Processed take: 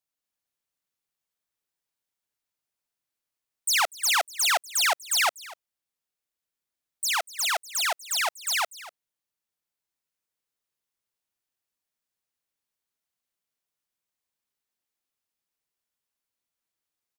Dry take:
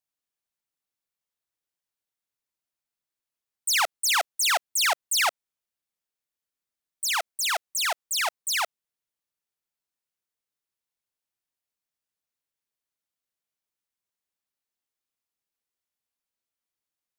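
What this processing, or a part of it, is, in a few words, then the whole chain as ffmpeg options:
ducked delay: -filter_complex "[0:a]asplit=3[a][b][c];[b]adelay=244,volume=-3dB[d];[c]apad=whole_len=768682[e];[d][e]sidechaincompress=threshold=-40dB:ratio=6:attack=16:release=1400[f];[a][f]amix=inputs=2:normalize=0"

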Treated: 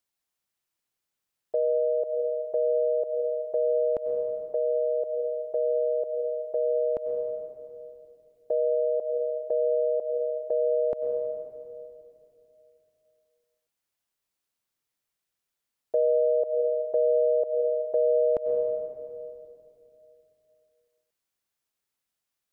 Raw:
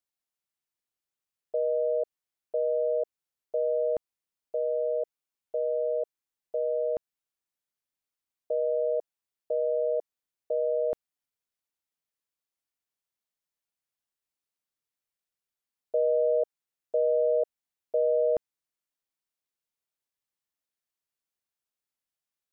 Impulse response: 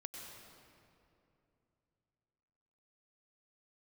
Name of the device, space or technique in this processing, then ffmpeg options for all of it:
ducked reverb: -filter_complex "[0:a]asplit=3[a][b][c];[1:a]atrim=start_sample=2205[d];[b][d]afir=irnorm=-1:irlink=0[e];[c]apad=whole_len=993382[f];[e][f]sidechaincompress=threshold=-33dB:ratio=8:attack=12:release=138,volume=4dB[g];[a][g]amix=inputs=2:normalize=0"

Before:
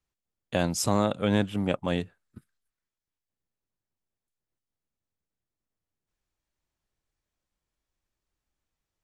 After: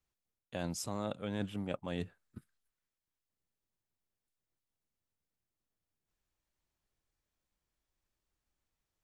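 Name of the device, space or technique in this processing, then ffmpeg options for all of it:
compression on the reversed sound: -af "areverse,acompressor=threshold=-33dB:ratio=4,areverse,volume=-2dB"

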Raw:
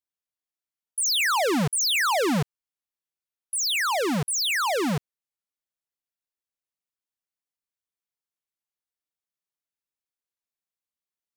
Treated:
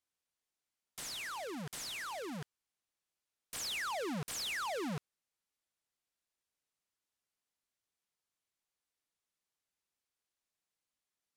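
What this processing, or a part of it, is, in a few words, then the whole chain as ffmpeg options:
overflowing digital effects unit: -af "aeval=exprs='(mod(84.1*val(0)+1,2)-1)/84.1':c=same,lowpass=11k,volume=3.5dB"

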